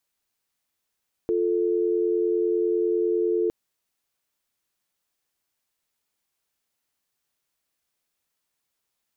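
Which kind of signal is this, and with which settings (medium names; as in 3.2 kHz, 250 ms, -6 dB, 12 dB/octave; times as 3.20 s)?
call progress tone dial tone, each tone -23 dBFS 2.21 s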